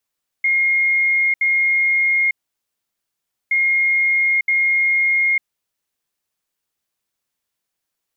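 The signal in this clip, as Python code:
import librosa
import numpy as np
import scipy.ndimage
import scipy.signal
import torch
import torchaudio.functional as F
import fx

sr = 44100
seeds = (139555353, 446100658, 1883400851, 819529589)

y = fx.beep_pattern(sr, wave='sine', hz=2140.0, on_s=0.9, off_s=0.07, beeps=2, pause_s=1.2, groups=2, level_db=-13.5)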